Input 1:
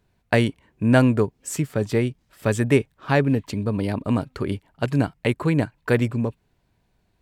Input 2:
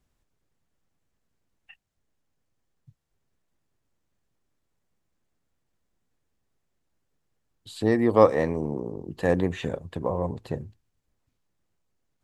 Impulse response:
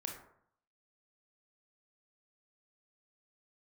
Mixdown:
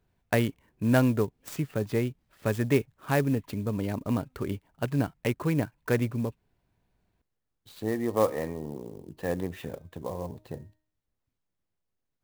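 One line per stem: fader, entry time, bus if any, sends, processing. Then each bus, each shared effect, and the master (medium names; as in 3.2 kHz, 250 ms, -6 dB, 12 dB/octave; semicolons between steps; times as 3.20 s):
-6.0 dB, 0.00 s, no send, treble shelf 5.8 kHz -6 dB
-7.5 dB, 0.00 s, no send, de-hum 310.2 Hz, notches 33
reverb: none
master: sampling jitter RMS 0.027 ms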